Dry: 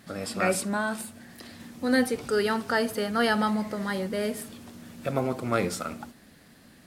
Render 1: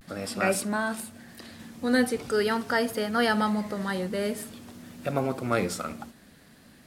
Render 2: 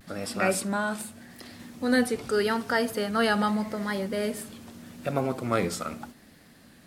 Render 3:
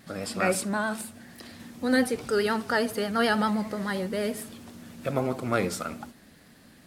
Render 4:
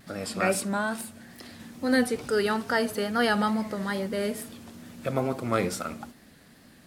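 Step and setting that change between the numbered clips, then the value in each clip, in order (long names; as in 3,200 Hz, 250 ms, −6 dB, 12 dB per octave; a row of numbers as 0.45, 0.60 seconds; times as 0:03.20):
pitch vibrato, speed: 0.44, 0.83, 9.6, 2.3 Hertz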